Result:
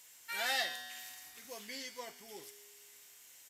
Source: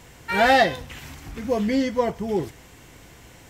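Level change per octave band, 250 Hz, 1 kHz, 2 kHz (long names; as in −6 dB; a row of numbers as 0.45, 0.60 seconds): −32.0, −21.5, −14.0 decibels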